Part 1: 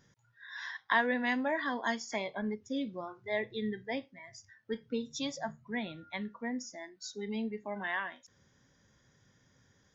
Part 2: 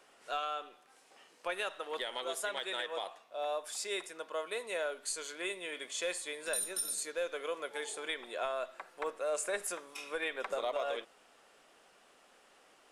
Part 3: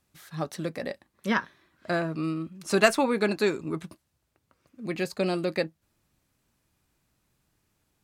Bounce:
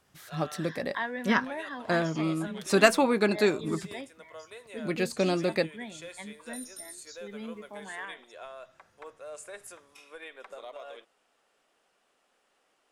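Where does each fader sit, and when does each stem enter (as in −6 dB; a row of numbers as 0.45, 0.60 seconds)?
−5.0, −8.5, +0.5 decibels; 0.05, 0.00, 0.00 seconds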